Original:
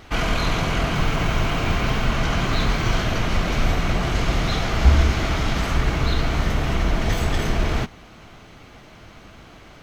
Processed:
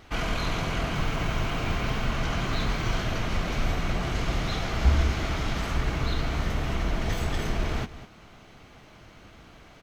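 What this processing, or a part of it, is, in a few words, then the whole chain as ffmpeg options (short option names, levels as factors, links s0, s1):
ducked delay: -filter_complex "[0:a]asplit=3[s0][s1][s2];[s1]adelay=200,volume=0.473[s3];[s2]apad=whole_len=442110[s4];[s3][s4]sidechaincompress=threshold=0.0447:ratio=8:attack=16:release=838[s5];[s0][s5]amix=inputs=2:normalize=0,volume=0.473"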